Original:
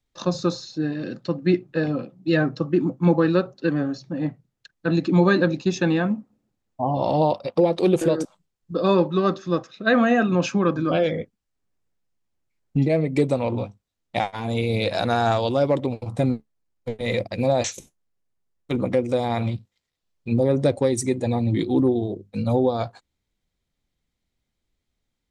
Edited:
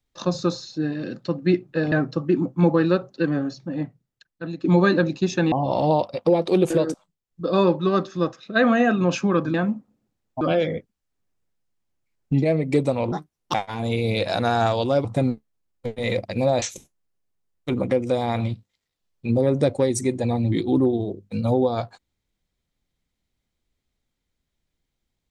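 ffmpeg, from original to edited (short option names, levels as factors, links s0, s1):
-filter_complex "[0:a]asplit=11[s0][s1][s2][s3][s4][s5][s6][s7][s8][s9][s10];[s0]atrim=end=1.922[s11];[s1]atrim=start=2.358:end=5.08,asetpts=PTS-STARTPTS,afade=t=out:st=1.632:d=1.09:silence=0.199526[s12];[s2]atrim=start=5.08:end=5.962,asetpts=PTS-STARTPTS,afade=t=in:d=0.004:c=hsin:silence=0.199526[s13];[s3]atrim=start=6.828:end=8.46,asetpts=PTS-STARTPTS,afade=t=out:st=1.352:d=0.28:silence=0.375837[s14];[s4]atrim=start=8.46:end=8.53,asetpts=PTS-STARTPTS,volume=0.376[s15];[s5]atrim=start=8.53:end=10.852,asetpts=PTS-STARTPTS,afade=t=in:d=0.28:silence=0.375837[s16];[s6]atrim=start=5.958:end=6.832[s17];[s7]atrim=start=10.848:end=13.564[s18];[s8]atrim=start=13.56:end=14.19,asetpts=PTS-STARTPTS,asetrate=66591,aresample=44100,atrim=end_sample=18399,asetpts=PTS-STARTPTS[s19];[s9]atrim=start=14.186:end=15.702[s20];[s10]atrim=start=16.068[s21];[s12][s13]concat=n=2:v=0:a=1[s22];[s11][s22]acrossfade=d=0.004:c1=hsin:c2=hsin[s23];[s14][s15][s16]concat=n=3:v=0:a=1[s24];[s23][s24]acrossfade=d=0.004:c1=hsin:c2=hsin[s25];[s25][s17]acrossfade=d=0.004:c1=hsin:c2=hsin[s26];[s26][s18]acrossfade=d=0.004:c1=hsin:c2=hsin[s27];[s27][s19]acrossfade=d=0.004:c1=hsin:c2=hsin[s28];[s28][s20]acrossfade=d=0.004:c1=hsin:c2=hsin[s29];[s29][s21]acrossfade=d=0.004:c1=hsin:c2=hsin"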